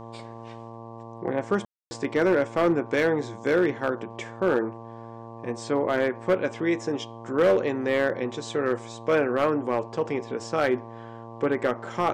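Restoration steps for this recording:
clipped peaks rebuilt −15 dBFS
hum removal 114.8 Hz, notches 10
ambience match 0:01.65–0:01.91

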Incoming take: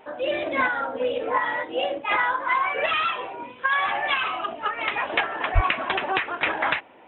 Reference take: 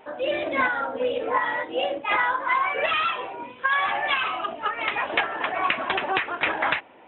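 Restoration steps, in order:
high-pass at the plosives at 0:05.54

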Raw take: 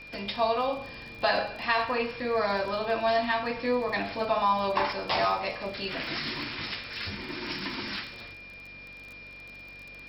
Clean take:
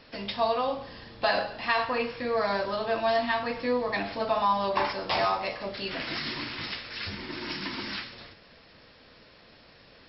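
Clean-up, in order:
click removal
hum removal 47.9 Hz, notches 7
notch filter 2,400 Hz, Q 30

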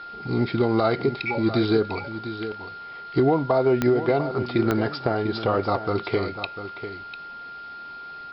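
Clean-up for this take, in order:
click removal
notch filter 1,400 Hz, Q 30
echo removal 697 ms −11 dB

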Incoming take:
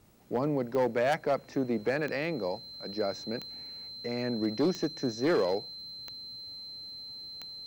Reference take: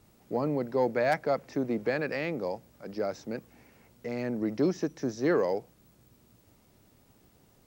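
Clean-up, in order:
clipped peaks rebuilt −21 dBFS
click removal
notch filter 4,100 Hz, Q 30

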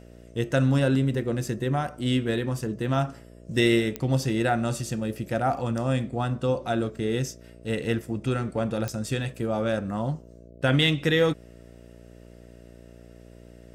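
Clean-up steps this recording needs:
click removal
hum removal 59.1 Hz, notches 11

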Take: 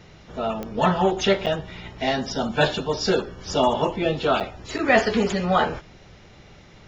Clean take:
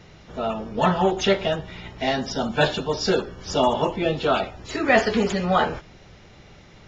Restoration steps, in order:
click removal
repair the gap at 0:01.46/0:04.40/0:04.78, 7.1 ms

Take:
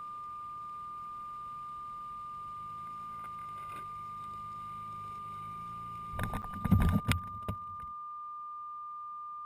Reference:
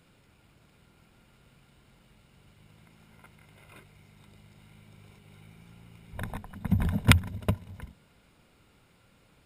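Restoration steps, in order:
clipped peaks rebuilt −15.5 dBFS
notch filter 1,200 Hz, Q 30
repair the gap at 0:06.42, 8.3 ms
level correction +11.5 dB, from 0:07.00

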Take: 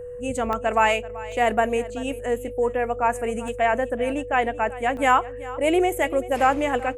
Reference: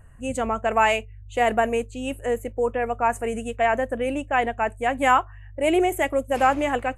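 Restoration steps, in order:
notch filter 490 Hz, Q 30
repair the gap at 0:00.53/0:01.32/0:03.48/0:04.97, 1.1 ms
echo removal 384 ms −18 dB

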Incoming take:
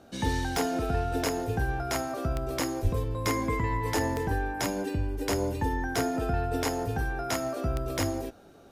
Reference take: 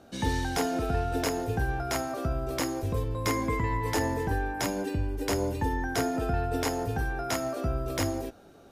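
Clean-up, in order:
click removal
0:02.83–0:02.95: high-pass filter 140 Hz 24 dB per octave

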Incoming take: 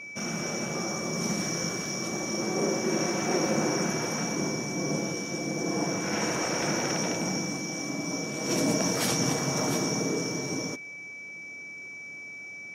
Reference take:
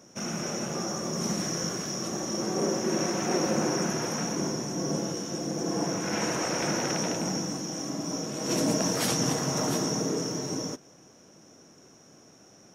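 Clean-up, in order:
notch filter 2,300 Hz, Q 30

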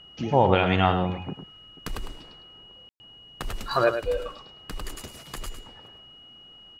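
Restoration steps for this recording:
notch filter 2,900 Hz, Q 30
ambience match 0:02.89–0:03.00
echo removal 105 ms −8.5 dB

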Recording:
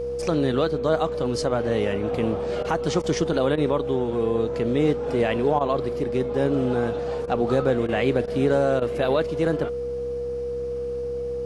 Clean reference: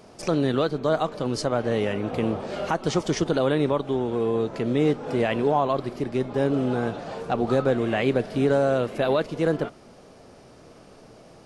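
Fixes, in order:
hum removal 65.7 Hz, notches 6
notch filter 480 Hz, Q 30
repair the gap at 0:02.63/0:03.02/0:03.56/0:05.59/0:07.26/0:07.87/0:08.26/0:08.80, 15 ms

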